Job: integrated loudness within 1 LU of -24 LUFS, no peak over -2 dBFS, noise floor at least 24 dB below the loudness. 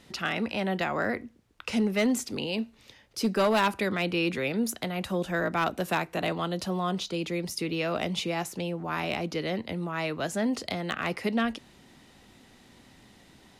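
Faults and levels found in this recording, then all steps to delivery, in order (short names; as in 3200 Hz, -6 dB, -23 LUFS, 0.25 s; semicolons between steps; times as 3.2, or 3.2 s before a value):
clipped 0.3%; flat tops at -18.5 dBFS; loudness -29.5 LUFS; peak -18.5 dBFS; loudness target -24.0 LUFS
-> clip repair -18.5 dBFS; gain +5.5 dB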